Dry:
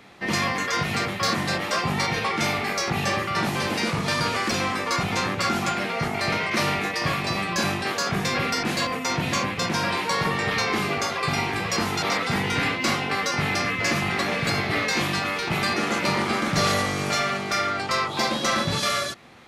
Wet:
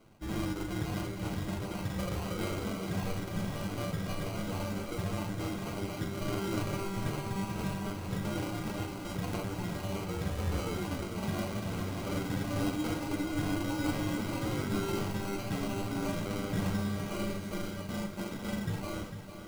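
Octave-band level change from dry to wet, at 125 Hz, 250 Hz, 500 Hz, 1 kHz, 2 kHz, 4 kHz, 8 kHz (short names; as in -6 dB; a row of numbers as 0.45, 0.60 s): -5.0, -5.0, -9.5, -16.0, -18.5, -17.5, -14.0 dB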